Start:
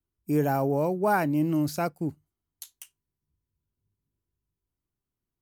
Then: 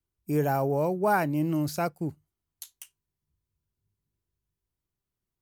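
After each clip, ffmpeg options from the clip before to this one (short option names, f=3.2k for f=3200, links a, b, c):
-af "equalizer=f=270:w=3.3:g=-4.5"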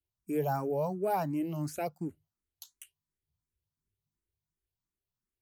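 -filter_complex "[0:a]asplit=2[a][b];[b]afreqshift=2.8[c];[a][c]amix=inputs=2:normalize=1,volume=-3.5dB"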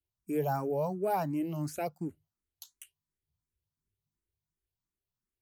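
-af anull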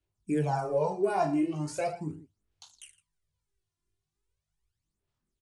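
-af "aecho=1:1:20|45|76.25|115.3|164.1:0.631|0.398|0.251|0.158|0.1,aphaser=in_gain=1:out_gain=1:delay=2.9:decay=0.65:speed=0.39:type=sinusoidal,aresample=22050,aresample=44100"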